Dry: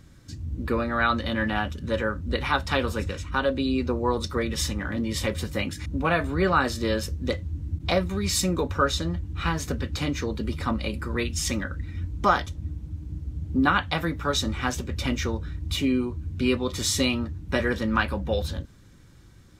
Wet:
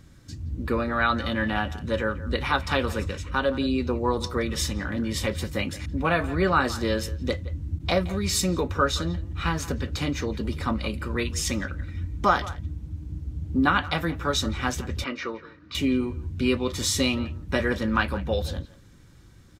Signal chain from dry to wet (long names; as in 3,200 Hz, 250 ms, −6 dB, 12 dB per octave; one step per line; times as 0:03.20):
0:15.04–0:15.75: loudspeaker in its box 350–4,400 Hz, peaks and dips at 790 Hz −10 dB, 1,200 Hz +7 dB, 3,400 Hz −9 dB
far-end echo of a speakerphone 170 ms, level −16 dB